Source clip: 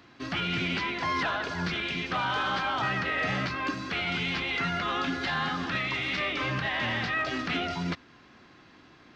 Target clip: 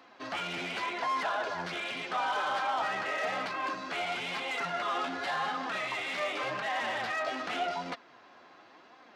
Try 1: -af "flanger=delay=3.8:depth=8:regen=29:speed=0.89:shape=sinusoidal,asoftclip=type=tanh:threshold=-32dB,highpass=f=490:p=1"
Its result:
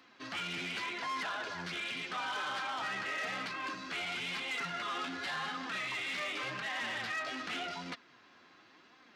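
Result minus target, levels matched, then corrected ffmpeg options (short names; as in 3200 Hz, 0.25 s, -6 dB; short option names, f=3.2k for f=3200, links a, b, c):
500 Hz band -6.0 dB
-af "flanger=delay=3.8:depth=8:regen=29:speed=0.89:shape=sinusoidal,asoftclip=type=tanh:threshold=-32dB,highpass=f=490:p=1,equalizer=f=680:w=0.89:g=11.5"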